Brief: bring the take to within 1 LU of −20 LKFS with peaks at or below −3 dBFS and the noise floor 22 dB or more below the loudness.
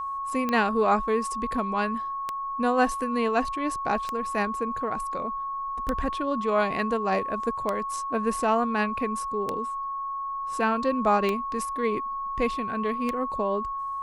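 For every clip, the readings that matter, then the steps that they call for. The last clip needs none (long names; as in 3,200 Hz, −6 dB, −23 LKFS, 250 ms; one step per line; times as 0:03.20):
number of clicks 8; interfering tone 1,100 Hz; level of the tone −29 dBFS; integrated loudness −27.0 LKFS; sample peak −9.0 dBFS; target loudness −20.0 LKFS
→ click removal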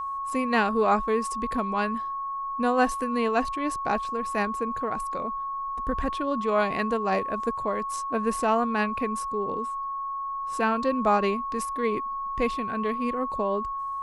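number of clicks 0; interfering tone 1,100 Hz; level of the tone −29 dBFS
→ notch filter 1,100 Hz, Q 30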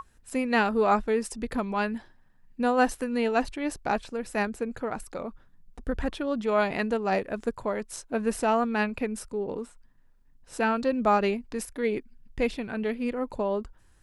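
interfering tone none found; integrated loudness −28.5 LKFS; sample peak −9.5 dBFS; target loudness −20.0 LKFS
→ level +8.5 dB
brickwall limiter −3 dBFS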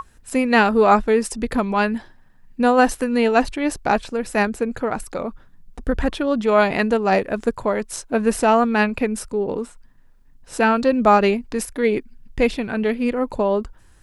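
integrated loudness −20.0 LKFS; sample peak −3.0 dBFS; background noise floor −51 dBFS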